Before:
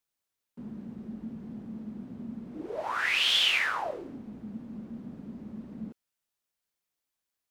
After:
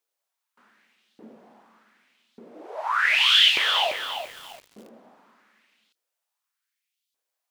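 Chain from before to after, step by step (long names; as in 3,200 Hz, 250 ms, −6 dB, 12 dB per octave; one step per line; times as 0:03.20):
auto-filter high-pass saw up 0.84 Hz 400–3,900 Hz
feedback echo at a low word length 342 ms, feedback 35%, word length 7 bits, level −7 dB
level +1.5 dB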